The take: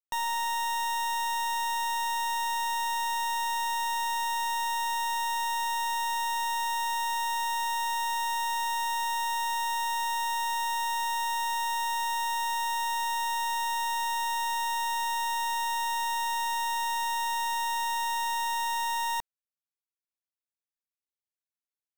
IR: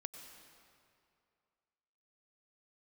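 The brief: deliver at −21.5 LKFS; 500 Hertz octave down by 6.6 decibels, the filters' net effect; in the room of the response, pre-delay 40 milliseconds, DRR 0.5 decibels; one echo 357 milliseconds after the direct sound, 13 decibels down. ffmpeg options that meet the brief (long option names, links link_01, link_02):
-filter_complex "[0:a]equalizer=frequency=500:width_type=o:gain=-8.5,aecho=1:1:357:0.224,asplit=2[link_01][link_02];[1:a]atrim=start_sample=2205,adelay=40[link_03];[link_02][link_03]afir=irnorm=-1:irlink=0,volume=3dB[link_04];[link_01][link_04]amix=inputs=2:normalize=0,volume=5dB"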